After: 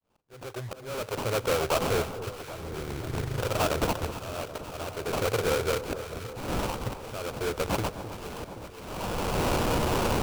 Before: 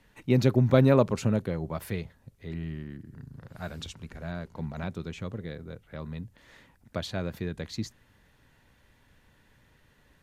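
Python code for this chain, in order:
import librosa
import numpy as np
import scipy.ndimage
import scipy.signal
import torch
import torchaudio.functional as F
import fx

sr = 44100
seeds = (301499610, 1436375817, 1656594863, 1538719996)

p1 = fx.fade_in_head(x, sr, length_s=1.35)
p2 = fx.recorder_agc(p1, sr, target_db=-18.0, rise_db_per_s=23.0, max_gain_db=30)
p3 = fx.curve_eq(p2, sr, hz=(120.0, 210.0, 450.0), db=(0, -17, 13))
p4 = fx.sample_hold(p3, sr, seeds[0], rate_hz=1900.0, jitter_pct=20)
p5 = 10.0 ** (-20.5 / 20.0) * np.tanh(p4 / 10.0 ** (-20.5 / 20.0))
p6 = fx.auto_swell(p5, sr, attack_ms=790.0)
y = p6 + fx.echo_alternate(p6, sr, ms=260, hz=1200.0, feedback_pct=80, wet_db=-11.0, dry=0)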